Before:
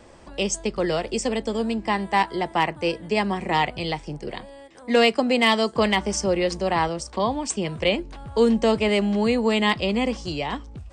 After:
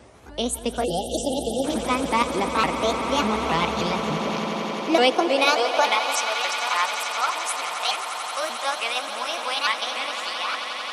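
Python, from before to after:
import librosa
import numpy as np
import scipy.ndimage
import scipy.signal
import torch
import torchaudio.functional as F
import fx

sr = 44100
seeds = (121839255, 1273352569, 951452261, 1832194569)

p1 = fx.pitch_ramps(x, sr, semitones=6.0, every_ms=293)
p2 = p1 + fx.echo_swell(p1, sr, ms=88, loudest=8, wet_db=-13, dry=0)
p3 = fx.spec_box(p2, sr, start_s=0.84, length_s=0.8, low_hz=870.0, high_hz=2700.0, gain_db=-28)
y = fx.filter_sweep_highpass(p3, sr, from_hz=63.0, to_hz=1200.0, start_s=3.43, end_s=6.37, q=1.3)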